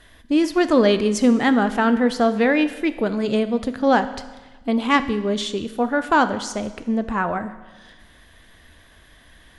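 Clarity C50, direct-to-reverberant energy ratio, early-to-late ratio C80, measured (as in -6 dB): 13.0 dB, 10.5 dB, 14.5 dB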